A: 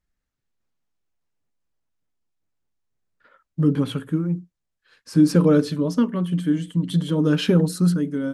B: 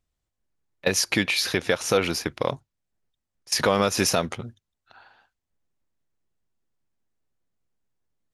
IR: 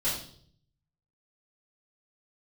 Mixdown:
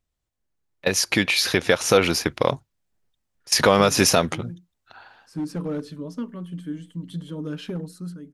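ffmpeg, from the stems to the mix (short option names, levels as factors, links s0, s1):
-filter_complex "[0:a]asoftclip=type=hard:threshold=0.316,adelay=200,volume=0.106[s0];[1:a]volume=0.944[s1];[s0][s1]amix=inputs=2:normalize=0,dynaudnorm=f=350:g=7:m=2.66"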